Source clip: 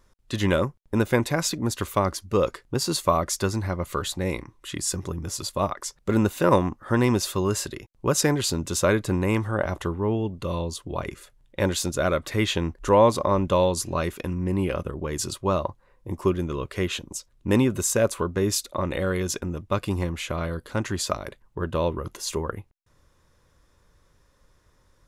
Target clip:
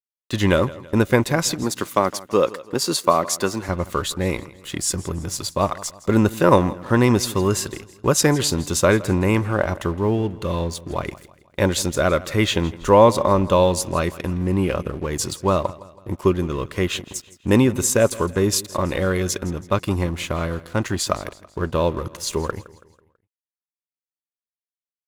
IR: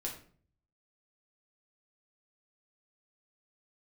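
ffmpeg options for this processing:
-filter_complex "[0:a]asettb=1/sr,asplit=3[link_01][link_02][link_03];[link_01]atrim=end=1.634[link_04];[link_02]atrim=start=1.63:end=3.69,asetpts=PTS-STARTPTS,afade=type=in:duration=0.004:curve=qsin,afade=type=out:start_time=2.056:duration=0.004:curve=qsin,highpass=200[link_05];[link_03]atrim=start=3.686[link_06];[link_04][link_05]acrossfade=duration=0.004:curve1=hsin:curve2=qsin[link_07];[link_07][link_06]acrossfade=duration=0.004:curve1=qsin:curve2=hsin,aeval=exprs='sgn(val(0))*max(abs(val(0))-0.00501,0)':channel_layout=same,asplit=2[link_08][link_09];[link_09]aecho=0:1:164|328|492|656:0.112|0.0505|0.0227|0.0102[link_10];[link_08][link_10]amix=inputs=2:normalize=0,volume=5dB"

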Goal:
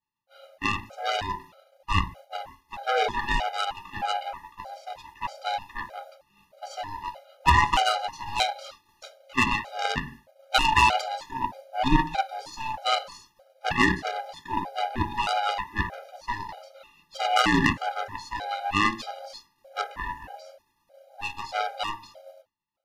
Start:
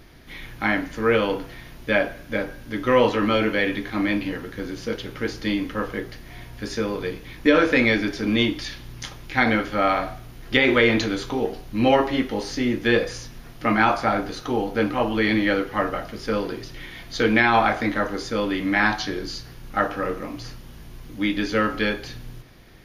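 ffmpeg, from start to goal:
ffmpeg -i in.wav -af "afftfilt=real='real(if(lt(b,1008),b+24*(1-2*mod(floor(b/24),2)),b),0)':imag='imag(if(lt(b,1008),b+24*(1-2*mod(floor(b/24),2)),b),0)':win_size=2048:overlap=0.75,bandreject=frequency=54.13:width_type=h:width=4,bandreject=frequency=108.26:width_type=h:width=4,bandreject=frequency=162.39:width_type=h:width=4,bandreject=frequency=216.52:width_type=h:width=4,bandreject=frequency=270.65:width_type=h:width=4,bandreject=frequency=324.78:width_type=h:width=4,bandreject=frequency=378.91:width_type=h:width=4,bandreject=frequency=433.04:width_type=h:width=4,aeval=exprs='0.708*(cos(1*acos(clip(val(0)/0.708,-1,1)))-cos(1*PI/2))+0.251*(cos(2*acos(clip(val(0)/0.708,-1,1)))-cos(2*PI/2))+0.01*(cos(6*acos(clip(val(0)/0.708,-1,1)))-cos(6*PI/2))+0.0631*(cos(7*acos(clip(val(0)/0.708,-1,1)))-cos(7*PI/2))+0.0447*(cos(8*acos(clip(val(0)/0.708,-1,1)))-cos(8*PI/2))':channel_layout=same,agate=range=-33dB:threshold=-40dB:ratio=3:detection=peak,afftfilt=real='re*gt(sin(2*PI*1.6*pts/sr)*(1-2*mod(floor(b*sr/1024/410),2)),0)':imag='im*gt(sin(2*PI*1.6*pts/sr)*(1-2*mod(floor(b*sr/1024/410),2)),0)':win_size=1024:overlap=0.75,volume=1.5dB" out.wav

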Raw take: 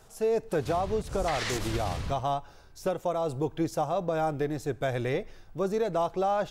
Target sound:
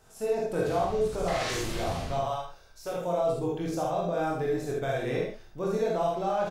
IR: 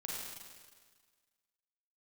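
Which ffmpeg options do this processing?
-filter_complex "[0:a]asettb=1/sr,asplit=3[link_01][link_02][link_03];[link_01]atrim=end=2.234[link_04];[link_02]atrim=start=2.23:end=2.92,asetpts=PTS-STARTPTS,afade=type=in:duration=0.004:curve=qsin,afade=type=out:start_time=0.686:duration=0.004:curve=qsin,equalizer=frequency=190:width_type=o:width=1.8:gain=-11.5[link_05];[link_03]atrim=start=2.916[link_06];[link_04][link_05]acrossfade=duration=0.004:curve1=hsin:curve2=qsin[link_07];[link_07][link_06]acrossfade=duration=0.004:curve1=qsin:curve2=hsin,aecho=1:1:23|74:0.596|0.501[link_08];[1:a]atrim=start_sample=2205,atrim=end_sample=3969[link_09];[link_08][link_09]afir=irnorm=-1:irlink=0"

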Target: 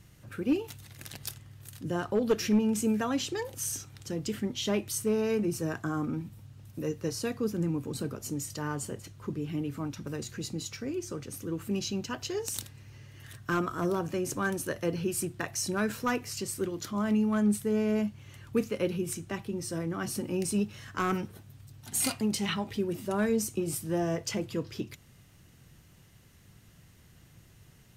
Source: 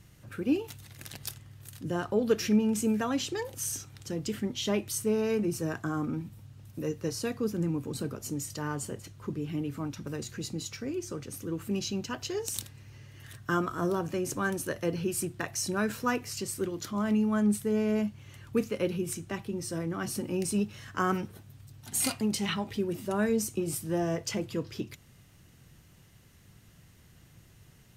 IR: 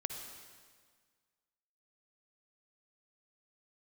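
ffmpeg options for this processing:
-af "aeval=exprs='clip(val(0),-1,0.1)':channel_layout=same"

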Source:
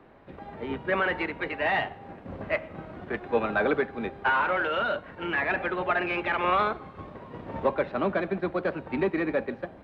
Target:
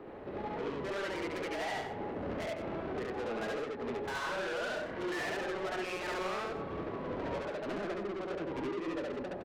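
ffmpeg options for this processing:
ffmpeg -i in.wav -af "equalizer=frequency=400:width=0.99:gain=9.5,acompressor=threshold=-27dB:ratio=8,asoftclip=type=tanh:threshold=-37.5dB,aecho=1:1:72.89|169.1:1|0.316,asetrate=45938,aresample=44100" out.wav

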